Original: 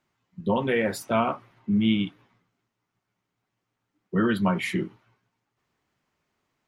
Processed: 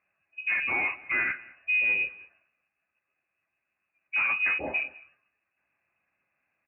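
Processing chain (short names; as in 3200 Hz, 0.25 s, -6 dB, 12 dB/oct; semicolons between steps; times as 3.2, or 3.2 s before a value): soft clip -20.5 dBFS, distortion -13 dB; inverted band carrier 2700 Hz; HPF 54 Hz; notch comb 460 Hz; on a send: echo 0.204 s -21.5 dB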